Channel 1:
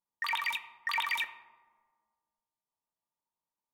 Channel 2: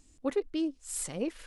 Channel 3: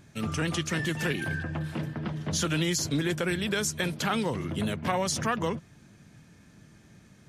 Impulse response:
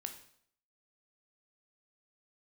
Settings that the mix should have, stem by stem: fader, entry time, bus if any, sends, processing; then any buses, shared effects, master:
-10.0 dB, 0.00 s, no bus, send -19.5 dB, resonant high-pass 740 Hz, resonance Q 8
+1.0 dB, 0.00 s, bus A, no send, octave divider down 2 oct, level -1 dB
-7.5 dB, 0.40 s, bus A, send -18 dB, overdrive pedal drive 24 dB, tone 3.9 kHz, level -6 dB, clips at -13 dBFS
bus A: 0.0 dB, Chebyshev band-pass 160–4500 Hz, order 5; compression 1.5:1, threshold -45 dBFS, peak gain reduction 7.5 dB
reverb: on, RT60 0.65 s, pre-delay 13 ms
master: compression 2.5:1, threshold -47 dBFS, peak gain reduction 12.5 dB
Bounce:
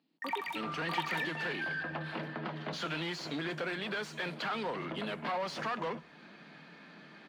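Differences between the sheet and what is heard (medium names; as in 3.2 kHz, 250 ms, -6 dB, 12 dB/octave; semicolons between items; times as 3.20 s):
stem 2 +1.0 dB -> -8.5 dB; master: missing compression 2.5:1, threshold -47 dBFS, peak gain reduction 12.5 dB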